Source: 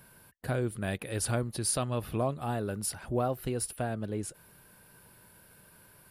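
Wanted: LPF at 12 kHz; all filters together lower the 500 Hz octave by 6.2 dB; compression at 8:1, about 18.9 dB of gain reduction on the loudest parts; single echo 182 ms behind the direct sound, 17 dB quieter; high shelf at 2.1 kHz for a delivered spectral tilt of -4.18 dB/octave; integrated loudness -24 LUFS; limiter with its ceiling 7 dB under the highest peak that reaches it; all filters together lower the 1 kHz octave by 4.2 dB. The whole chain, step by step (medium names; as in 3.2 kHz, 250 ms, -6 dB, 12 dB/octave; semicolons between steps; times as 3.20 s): low-pass 12 kHz; peaking EQ 500 Hz -7.5 dB; peaking EQ 1 kHz -4.5 dB; treble shelf 2.1 kHz +7.5 dB; compression 8:1, threshold -41 dBFS; peak limiter -35.5 dBFS; delay 182 ms -17 dB; trim +23.5 dB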